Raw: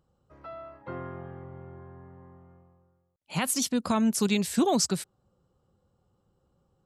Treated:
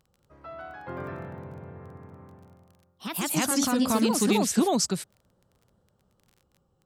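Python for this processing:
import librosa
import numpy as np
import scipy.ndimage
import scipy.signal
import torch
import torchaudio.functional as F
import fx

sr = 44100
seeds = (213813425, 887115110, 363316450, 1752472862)

y = fx.echo_pitch(x, sr, ms=193, semitones=2, count=2, db_per_echo=-3.0)
y = fx.dmg_crackle(y, sr, seeds[0], per_s=25.0, level_db=-45.0)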